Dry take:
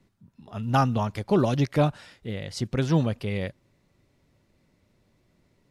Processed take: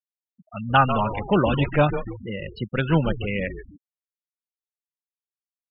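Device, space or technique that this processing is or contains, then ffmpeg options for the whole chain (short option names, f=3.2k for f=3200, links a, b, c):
kitchen radio: -filter_complex "[0:a]highpass=170,equalizer=f=260:t=q:w=4:g=-7,equalizer=f=390:t=q:w=4:g=-6,equalizer=f=680:t=q:w=4:g=-3,equalizer=f=1.5k:t=q:w=4:g=5,equalizer=f=2.8k:t=q:w=4:g=6,lowpass=f=3.8k:w=0.5412,lowpass=f=3.8k:w=1.3066,asettb=1/sr,asplit=3[a][b][c];[a]atrim=end=2.734[d];[b]atrim=start=2.73:end=3.2,asetpts=PTS-STARTPTS,afade=t=in:d=0.004:c=qsin,afade=t=out:st=0.466:d=0.004:c=qsin,lowpass=7.6k[e];[c]atrim=start=3.196[f];[d][e]acrossfade=d=0.004:c1=hsin:c2=qsin[g];[g][f]acrossfade=d=0.004:c1=qsin:c2=hsin,asplit=6[h][i][j][k][l][m];[i]adelay=145,afreqshift=-130,volume=-9dB[n];[j]adelay=290,afreqshift=-260,volume=-15.7dB[o];[k]adelay=435,afreqshift=-390,volume=-22.5dB[p];[l]adelay=580,afreqshift=-520,volume=-29.2dB[q];[m]adelay=725,afreqshift=-650,volume=-36dB[r];[h][n][o][p][q][r]amix=inputs=6:normalize=0,afftfilt=real='re*gte(hypot(re,im),0.0282)':imag='im*gte(hypot(re,im),0.0282)':win_size=1024:overlap=0.75,volume=6dB"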